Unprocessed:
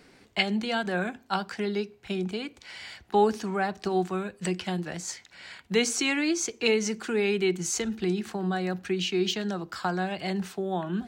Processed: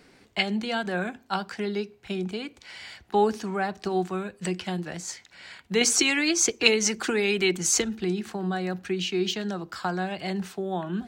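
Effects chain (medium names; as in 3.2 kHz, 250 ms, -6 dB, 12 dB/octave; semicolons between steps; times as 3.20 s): 5.81–7.84 s: harmonic-percussive split percussive +9 dB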